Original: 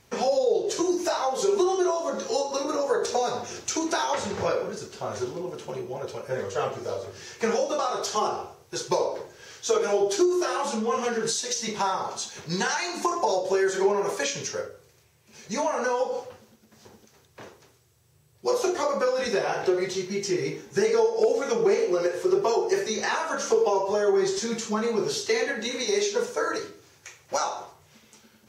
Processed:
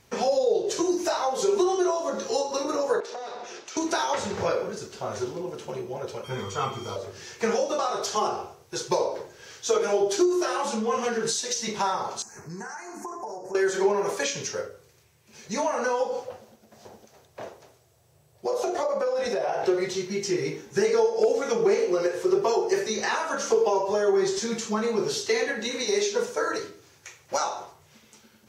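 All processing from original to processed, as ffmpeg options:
ffmpeg -i in.wav -filter_complex "[0:a]asettb=1/sr,asplit=3[link_01][link_02][link_03];[link_01]atrim=end=3.004[link_04];[link_02]atrim=start=3:end=3.77,asetpts=PTS-STARTPTS,afade=type=in:duration=0.004:curve=qsin,afade=type=out:start_time=0.766:duration=0.004:curve=qsin,acompressor=threshold=-31dB:ratio=4:attack=3.2:release=140:knee=1:detection=peak,aeval=exprs='clip(val(0),-1,0.0188)':channel_layout=same,highpass=360,lowpass=5000[link_05];[link_03]atrim=start=3.766[link_06];[link_04][link_05]acrossfade=duration=0.004:curve1=hsin:curve2=qsin[link_07];[link_07][link_06]acrossfade=duration=0.004:curve1=qsin:curve2=hsin,asettb=1/sr,asplit=3[link_08][link_09][link_10];[link_08]atrim=end=6.244[link_11];[link_09]atrim=start=6.24:end=6.96,asetpts=PTS-STARTPTS,afade=type=in:duration=0.004:curve=qsin,afade=type=out:start_time=0.716:duration=0.004:curve=qsin,aeval=exprs='val(0)+0.00398*sin(2*PI*3200*n/s)':channel_layout=same,aecho=1:1:0.9:0.73,atrim=end_sample=31752[link_12];[link_10]atrim=start=6.956[link_13];[link_11][link_12]acrossfade=duration=0.004:curve1=hsin:curve2=qsin[link_14];[link_14][link_13]acrossfade=duration=0.004:curve1=qsin:curve2=hsin,asettb=1/sr,asplit=3[link_15][link_16][link_17];[link_15]atrim=end=12.224[link_18];[link_16]atrim=start=12.22:end=13.55,asetpts=PTS-STARTPTS,afade=type=in:duration=0.004:curve=qsin,afade=type=out:start_time=1.326:duration=0.004:curve=qsin,equalizer=frequency=540:width=7.6:gain=-11.5,acompressor=threshold=-37dB:ratio=2.5:attack=3.2:release=140:knee=1:detection=peak,asuperstop=centerf=3400:order=4:qfactor=0.77[link_19];[link_17]atrim=start=13.546[link_20];[link_18][link_19]acrossfade=duration=0.004:curve1=hsin:curve2=qsin[link_21];[link_21][link_20]acrossfade=duration=0.004:curve1=qsin:curve2=hsin,asettb=1/sr,asplit=3[link_22][link_23][link_24];[link_22]atrim=end=16.284[link_25];[link_23]atrim=start=16.28:end=19.65,asetpts=PTS-STARTPTS,afade=type=in:duration=0.004:curve=qsin,afade=type=out:start_time=3.366:duration=0.004:curve=qsin,equalizer=frequency=650:width=1.9:gain=12,acompressor=threshold=-24dB:ratio=4:attack=3.2:release=140:knee=1:detection=peak[link_26];[link_24]atrim=start=19.646[link_27];[link_25][link_26]acrossfade=duration=0.004:curve1=hsin:curve2=qsin[link_28];[link_28][link_27]acrossfade=duration=0.004:curve1=qsin:curve2=hsin" out.wav

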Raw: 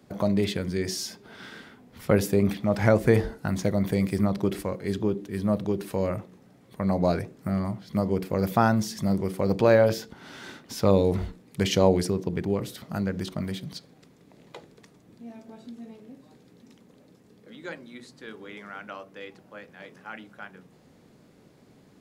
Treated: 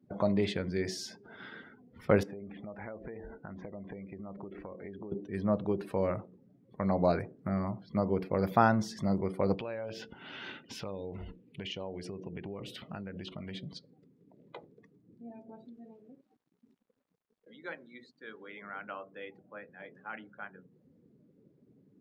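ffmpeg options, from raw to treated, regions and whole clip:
ffmpeg -i in.wav -filter_complex "[0:a]asettb=1/sr,asplit=3[link_01][link_02][link_03];[link_01]atrim=end=2.234[link_04];[link_02]atrim=start=2.23:end=5.12,asetpts=PTS-STARTPTS,afade=type=in:duration=0.004:curve=qsin,afade=type=out:start_time=2.886:duration=0.004:curve=qsin,lowpass=2900,equalizer=frequency=120:width=3.2:gain=-11.5,acompressor=threshold=-35dB:ratio=16:attack=3.2:release=140:knee=1:detection=peak[link_05];[link_03]atrim=start=5.116[link_06];[link_04][link_05]acrossfade=duration=0.004:curve1=hsin:curve2=qsin[link_07];[link_07][link_06]acrossfade=duration=0.004:curve1=qsin:curve2=hsin,asettb=1/sr,asplit=3[link_08][link_09][link_10];[link_08]atrim=end=9.544[link_11];[link_09]atrim=start=9.54:end=13.55,asetpts=PTS-STARTPTS,afade=type=in:duration=0.004:curve=qsin,afade=type=out:start_time=4.006:duration=0.004:curve=qsin,equalizer=frequency=2800:width=2.5:gain=10.5,acompressor=threshold=-32dB:ratio=8:attack=3.2:release=140:knee=1:detection=peak[link_12];[link_10]atrim=start=13.546[link_13];[link_11][link_12]acrossfade=duration=0.004:curve1=hsin:curve2=qsin[link_14];[link_14][link_13]acrossfade=duration=0.004:curve1=qsin:curve2=hsin,asettb=1/sr,asplit=3[link_15][link_16][link_17];[link_15]atrim=end=15.654[link_18];[link_16]atrim=start=15.65:end=18.62,asetpts=PTS-STARTPTS,afade=type=in:duration=0.004:curve=qsin,afade=type=out:start_time=2.966:duration=0.004:curve=qsin,lowshelf=frequency=370:gain=-6,aeval=exprs='val(0)*gte(abs(val(0)),0.00178)':channel_layout=same[link_19];[link_17]atrim=start=18.616[link_20];[link_18][link_19]acrossfade=duration=0.004:curve1=hsin:curve2=qsin[link_21];[link_21][link_20]acrossfade=duration=0.004:curve1=qsin:curve2=hsin,afftdn=noise_reduction=22:noise_floor=-49,lowpass=frequency=2300:poles=1,lowshelf=frequency=440:gain=-6.5" out.wav

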